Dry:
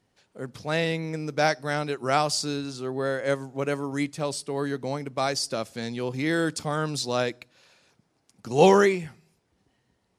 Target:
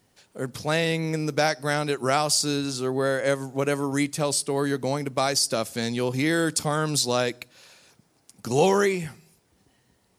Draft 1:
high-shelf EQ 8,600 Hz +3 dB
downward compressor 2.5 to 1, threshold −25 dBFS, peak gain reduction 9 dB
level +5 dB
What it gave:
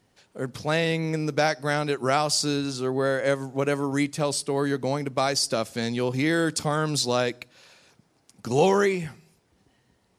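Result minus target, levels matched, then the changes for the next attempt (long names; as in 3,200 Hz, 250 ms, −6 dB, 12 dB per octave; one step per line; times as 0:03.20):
8,000 Hz band −3.0 dB
change: high-shelf EQ 8,600 Hz +14 dB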